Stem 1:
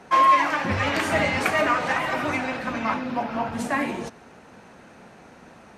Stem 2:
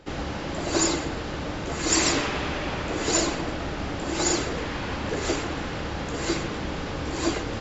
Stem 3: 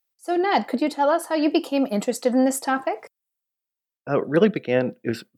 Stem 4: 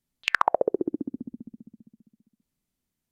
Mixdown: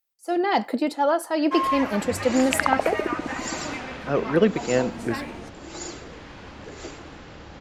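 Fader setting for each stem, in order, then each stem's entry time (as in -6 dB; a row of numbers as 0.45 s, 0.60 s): -8.5 dB, -11.5 dB, -1.5 dB, -1.5 dB; 1.40 s, 1.55 s, 0.00 s, 2.25 s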